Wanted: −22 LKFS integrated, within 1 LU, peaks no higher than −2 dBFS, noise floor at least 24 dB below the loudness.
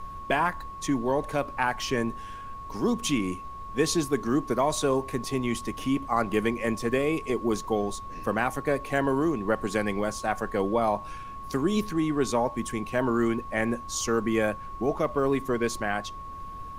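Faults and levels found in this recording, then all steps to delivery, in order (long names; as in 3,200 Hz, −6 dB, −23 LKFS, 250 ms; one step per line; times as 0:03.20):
interfering tone 1,100 Hz; level of the tone −38 dBFS; background noise floor −40 dBFS; target noise floor −52 dBFS; integrated loudness −27.5 LKFS; sample peak −10.5 dBFS; target loudness −22.0 LKFS
→ notch filter 1,100 Hz, Q 30
noise reduction from a noise print 12 dB
level +5.5 dB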